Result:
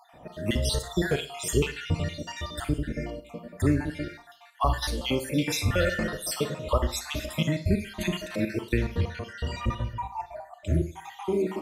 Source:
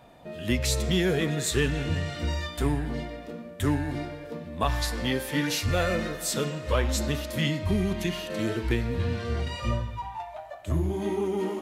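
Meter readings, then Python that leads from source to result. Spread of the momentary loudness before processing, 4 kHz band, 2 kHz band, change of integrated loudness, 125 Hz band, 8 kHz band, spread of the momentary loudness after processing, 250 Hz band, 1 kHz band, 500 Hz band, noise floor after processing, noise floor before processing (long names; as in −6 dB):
11 LU, −1.0 dB, −1.0 dB, −1.0 dB, −0.5 dB, −1.5 dB, 10 LU, −0.5 dB, +0.5 dB, −1.0 dB, −52 dBFS, −43 dBFS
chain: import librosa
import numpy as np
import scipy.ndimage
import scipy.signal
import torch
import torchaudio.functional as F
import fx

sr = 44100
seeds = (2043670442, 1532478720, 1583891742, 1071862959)

y = fx.spec_dropout(x, sr, seeds[0], share_pct=59)
y = fx.rev_schroeder(y, sr, rt60_s=0.39, comb_ms=33, drr_db=9.5)
y = F.gain(torch.from_numpy(y), 2.5).numpy()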